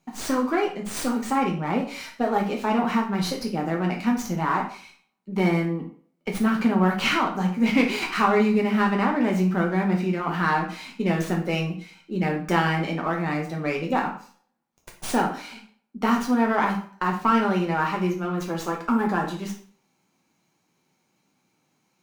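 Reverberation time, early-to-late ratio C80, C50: 0.45 s, 12.5 dB, 8.0 dB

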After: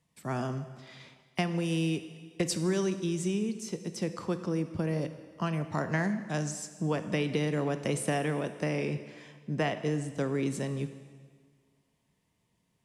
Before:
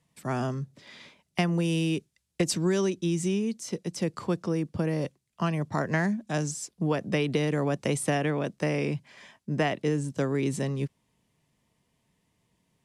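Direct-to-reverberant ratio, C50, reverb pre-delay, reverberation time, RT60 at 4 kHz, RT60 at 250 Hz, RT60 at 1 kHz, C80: 9.5 dB, 11.0 dB, 7 ms, 1.7 s, 1.6 s, 1.8 s, 1.7 s, 12.5 dB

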